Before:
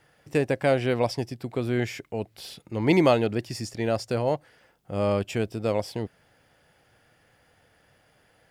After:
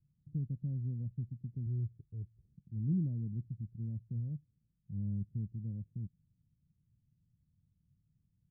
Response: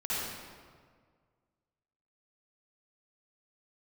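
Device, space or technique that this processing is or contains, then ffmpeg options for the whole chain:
the neighbour's flat through the wall: -filter_complex "[0:a]asettb=1/sr,asplit=3[link_01][link_02][link_03];[link_01]atrim=end=1.664[link_04];[link_02]atrim=start=1.66:end=2.46,asetpts=PTS-STARTPTS,afade=type=in:duration=0.004:curve=qsin,afade=type=out:start_time=0.796:duration=0.004:curve=qsin,aecho=1:1:2.3:0.71,atrim=end_sample=35280[link_05];[link_03]atrim=start=2.456[link_06];[link_04][link_05]acrossfade=duration=0.004:curve1=hsin:curve2=qsin[link_07];[link_07][link_06]acrossfade=duration=0.004:curve1=qsin:curve2=hsin,lowpass=frequency=170:width=0.5412,lowpass=frequency=170:width=1.3066,equalizer=frequency=180:width_type=o:width=0.77:gain=4,volume=-5.5dB"

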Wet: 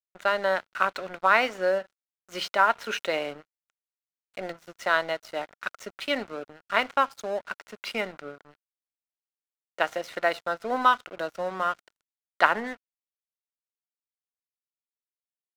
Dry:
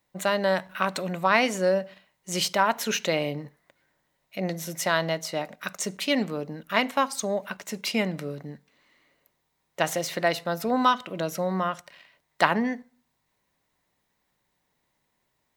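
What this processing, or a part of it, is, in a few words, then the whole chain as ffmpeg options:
pocket radio on a weak battery: -af "highpass=380,lowpass=3600,aeval=exprs='sgn(val(0))*max(abs(val(0))-0.0075,0)':channel_layout=same,equalizer=frequency=1400:width_type=o:width=0.22:gain=9"

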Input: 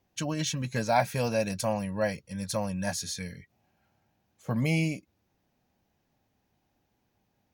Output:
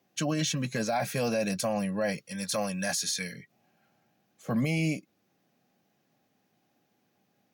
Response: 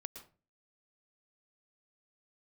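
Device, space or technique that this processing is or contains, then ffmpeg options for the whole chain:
PA system with an anti-feedback notch: -filter_complex "[0:a]asettb=1/sr,asplit=3[link_01][link_02][link_03];[link_01]atrim=end=2.174[link_04];[link_02]atrim=start=2.17:end=3.34,asetpts=PTS-STARTPTS,afade=type=in:duration=0.004:curve=qsin,afade=type=out:start_time=1.166:duration=0.004:curve=qsin,tiltshelf=frequency=710:gain=-4.5[link_05];[link_03]atrim=start=3.336[link_06];[link_04][link_05]acrossfade=duration=0.004:curve1=hsin:curve2=qsin[link_07];[link_07][link_06]acrossfade=duration=0.004:curve1=qsin:curve2=hsin,highpass=frequency=140:width=0.5412,highpass=frequency=140:width=1.3066,asuperstop=centerf=930:order=4:qfactor=7.4,alimiter=limit=-24dB:level=0:latency=1:release=16,volume=3.5dB"

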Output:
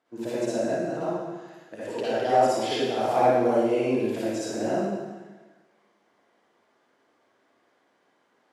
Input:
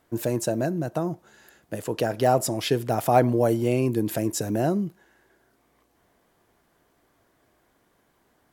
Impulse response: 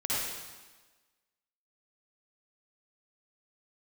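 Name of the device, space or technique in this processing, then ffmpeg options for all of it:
supermarket ceiling speaker: -filter_complex "[0:a]highpass=270,lowpass=5400[link_01];[1:a]atrim=start_sample=2205[link_02];[link_01][link_02]afir=irnorm=-1:irlink=0,volume=-7.5dB"

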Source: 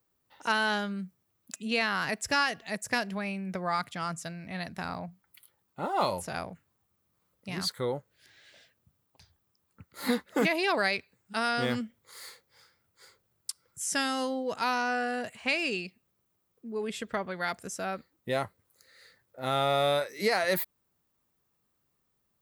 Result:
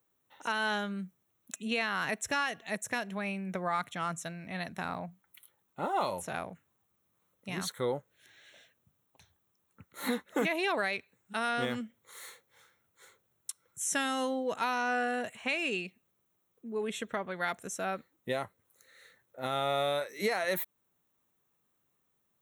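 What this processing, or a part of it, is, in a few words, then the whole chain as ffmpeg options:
PA system with an anti-feedback notch: -af "highpass=frequency=140:poles=1,asuperstop=centerf=4800:order=4:qfactor=3.8,alimiter=limit=-20dB:level=0:latency=1:release=308"

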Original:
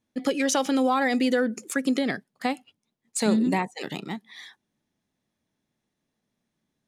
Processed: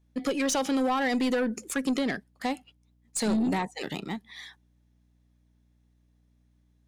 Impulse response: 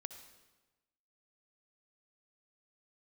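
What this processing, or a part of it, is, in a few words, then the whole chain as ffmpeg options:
valve amplifier with mains hum: -af "aeval=exprs='(tanh(11.2*val(0)+0.15)-tanh(0.15))/11.2':channel_layout=same,aeval=exprs='val(0)+0.000631*(sin(2*PI*60*n/s)+sin(2*PI*2*60*n/s)/2+sin(2*PI*3*60*n/s)/3+sin(2*PI*4*60*n/s)/4+sin(2*PI*5*60*n/s)/5)':channel_layout=same"

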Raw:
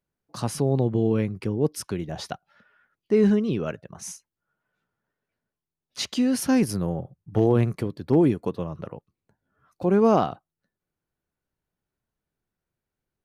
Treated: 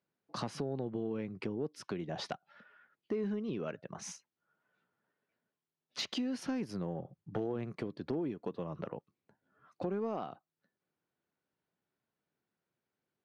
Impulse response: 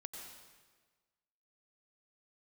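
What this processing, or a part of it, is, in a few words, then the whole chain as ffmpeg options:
AM radio: -af "highpass=170,lowpass=4400,acompressor=threshold=-34dB:ratio=5,asoftclip=type=tanh:threshold=-23dB"

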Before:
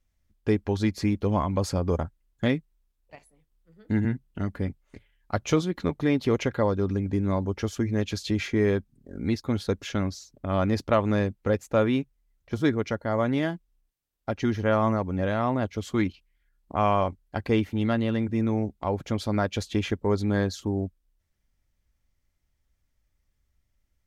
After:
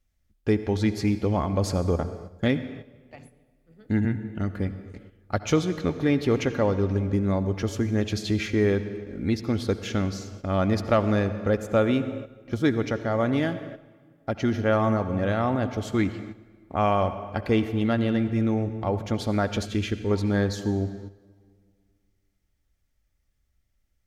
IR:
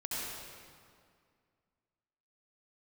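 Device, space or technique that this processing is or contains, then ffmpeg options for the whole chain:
keyed gated reverb: -filter_complex "[0:a]bandreject=frequency=1000:width=8.3,asplit=3[link_01][link_02][link_03];[1:a]atrim=start_sample=2205[link_04];[link_02][link_04]afir=irnorm=-1:irlink=0[link_05];[link_03]apad=whole_len=1061343[link_06];[link_05][link_06]sidechaingate=range=-9dB:threshold=-56dB:ratio=16:detection=peak,volume=-13dB[link_07];[link_01][link_07]amix=inputs=2:normalize=0,asettb=1/sr,asplit=3[link_08][link_09][link_10];[link_08]atrim=end=19.654[link_11];[link_09]atrim=start=19.65:end=20.11,asetpts=PTS-STARTPTS,afade=type=in:duration=0.004:curve=qsin,afade=type=out:start_time=0.456:duration=0.004:curve=qsin,equalizer=frequency=780:width_type=o:width=1.1:gain=-13[link_12];[link_10]atrim=start=20.106[link_13];[link_11][link_12]acrossfade=duration=0.004:curve1=hsin:curve2=qsin[link_14];[link_14][link_13]acrossfade=duration=0.004:curve1=qsin:curve2=hsin"

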